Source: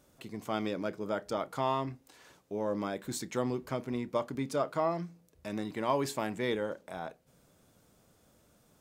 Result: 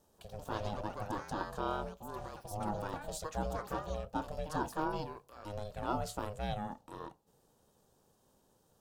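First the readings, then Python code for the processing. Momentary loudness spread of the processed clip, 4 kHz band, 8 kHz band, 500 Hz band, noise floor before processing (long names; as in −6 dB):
9 LU, −5.0 dB, −4.5 dB, −7.0 dB, −67 dBFS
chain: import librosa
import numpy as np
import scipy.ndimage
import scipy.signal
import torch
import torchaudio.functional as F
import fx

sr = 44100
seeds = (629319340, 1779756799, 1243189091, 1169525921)

y = fx.echo_pitch(x, sr, ms=138, semitones=5, count=2, db_per_echo=-6.0)
y = y * np.sin(2.0 * np.pi * 310.0 * np.arange(len(y)) / sr)
y = fx.peak_eq(y, sr, hz=2100.0, db=-11.5, octaves=0.52)
y = y * 10.0 ** (-2.0 / 20.0)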